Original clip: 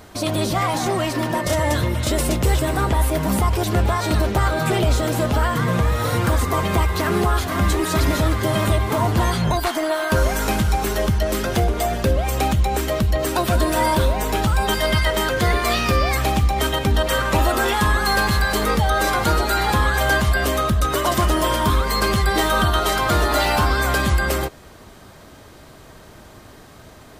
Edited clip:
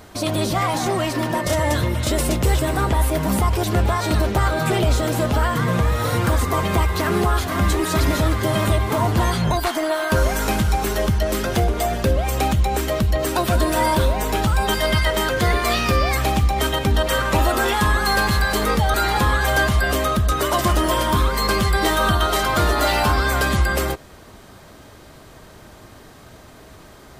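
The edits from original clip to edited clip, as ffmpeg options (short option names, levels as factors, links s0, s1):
-filter_complex "[0:a]asplit=2[s0][s1];[s0]atrim=end=18.942[s2];[s1]atrim=start=19.468[s3];[s2][s3]acrossfade=d=0.004:c1=hsin:c2=hsin"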